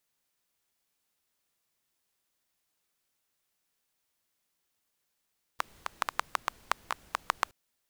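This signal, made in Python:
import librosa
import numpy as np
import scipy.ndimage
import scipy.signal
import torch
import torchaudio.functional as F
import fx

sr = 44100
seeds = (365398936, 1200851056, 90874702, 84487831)

y = fx.rain(sr, seeds[0], length_s=1.92, drops_per_s=6.9, hz=1100.0, bed_db=-22.0)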